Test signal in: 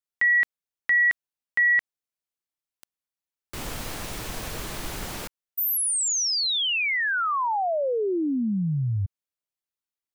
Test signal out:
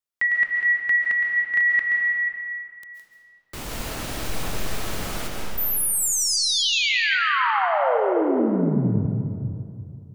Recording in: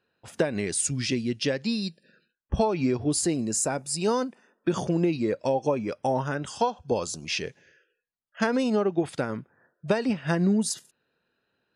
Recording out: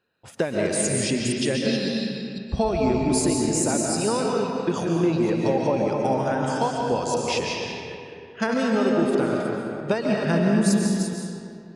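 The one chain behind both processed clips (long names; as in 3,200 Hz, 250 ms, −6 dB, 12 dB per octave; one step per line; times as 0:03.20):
delay that plays each chunk backwards 265 ms, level −6.5 dB
comb and all-pass reverb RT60 2.4 s, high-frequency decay 0.65×, pre-delay 100 ms, DRR −0.5 dB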